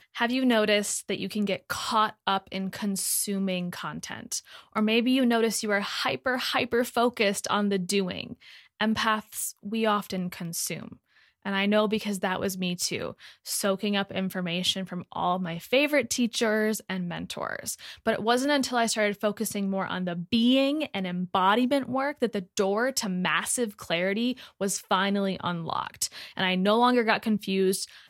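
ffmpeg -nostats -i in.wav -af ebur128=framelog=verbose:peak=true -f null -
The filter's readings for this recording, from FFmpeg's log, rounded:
Integrated loudness:
  I:         -26.9 LUFS
  Threshold: -37.0 LUFS
Loudness range:
  LRA:         3.1 LU
  Threshold: -47.2 LUFS
  LRA low:   -28.9 LUFS
  LRA high:  -25.8 LUFS
True peak:
  Peak:       -7.0 dBFS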